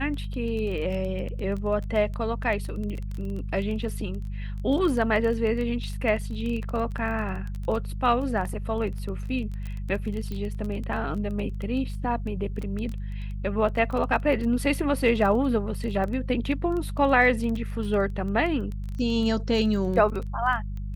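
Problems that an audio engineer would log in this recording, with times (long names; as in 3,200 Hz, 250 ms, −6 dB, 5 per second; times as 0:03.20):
surface crackle 16 per second −30 dBFS
mains hum 50 Hz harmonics 4 −32 dBFS
0:10.32: click −22 dBFS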